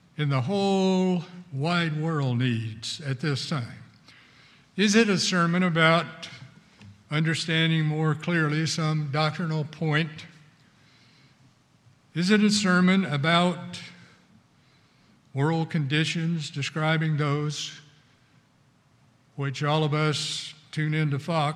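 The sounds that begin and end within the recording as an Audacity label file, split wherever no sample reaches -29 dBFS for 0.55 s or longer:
4.780000	6.250000	sound
7.120000	10.190000	sound
12.160000	13.780000	sound
15.360000	17.680000	sound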